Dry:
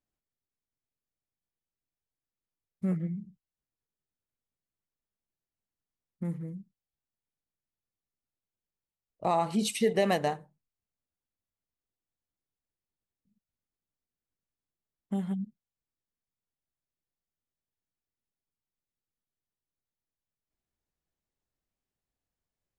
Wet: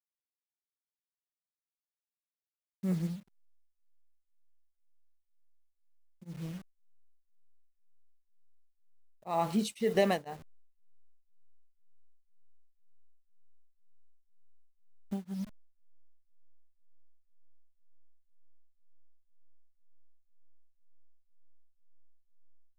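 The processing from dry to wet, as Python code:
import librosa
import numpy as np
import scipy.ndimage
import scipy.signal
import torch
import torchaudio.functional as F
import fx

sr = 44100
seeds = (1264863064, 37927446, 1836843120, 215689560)

y = fx.delta_hold(x, sr, step_db=-44.0)
y = y * np.abs(np.cos(np.pi * 2.0 * np.arange(len(y)) / sr))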